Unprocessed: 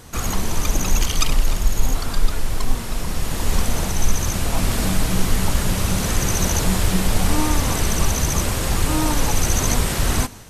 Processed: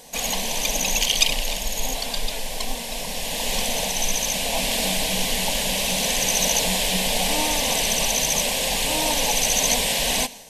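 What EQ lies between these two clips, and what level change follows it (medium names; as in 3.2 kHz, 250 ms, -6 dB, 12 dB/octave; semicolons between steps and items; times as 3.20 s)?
dynamic bell 3 kHz, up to +7 dB, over -42 dBFS, Q 1.2; tone controls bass -15 dB, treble -2 dB; static phaser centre 350 Hz, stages 6; +4.0 dB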